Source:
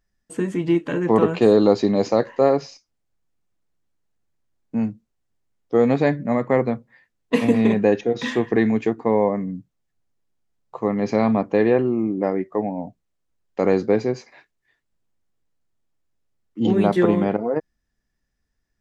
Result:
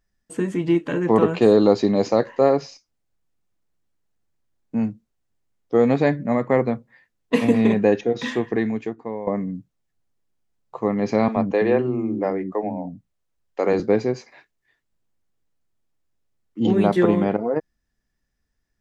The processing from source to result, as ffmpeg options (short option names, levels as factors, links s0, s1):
-filter_complex "[0:a]asettb=1/sr,asplit=3[s0][s1][s2];[s0]atrim=end=11.284[s3];[s1]atrim=start=11.28:end=13.8,asetpts=PTS-STARTPTS,afade=t=in:d=0.004:c=qsin,afade=t=out:st=2.516:d=0.004:c=qsin,acrossover=split=280[s4][s5];[s4]adelay=80[s6];[s6][s5]amix=inputs=2:normalize=0,atrim=end_sample=111132[s7];[s2]atrim=start=13.796[s8];[s3][s7]acrossfade=d=0.004:c1=hsin:c2=qsin[s9];[s9][s8]acrossfade=d=0.004:c1=qsin:c2=hsin,asplit=2[s10][s11];[s10]atrim=end=9.27,asetpts=PTS-STARTPTS,afade=t=out:st=8.06:d=1.21:silence=0.177828[s12];[s11]atrim=start=9.27,asetpts=PTS-STARTPTS,afade=t=in:d=0.004:c=hsin:silence=0.177828[s13];[s12][s13]concat=n=2:v=0:a=1"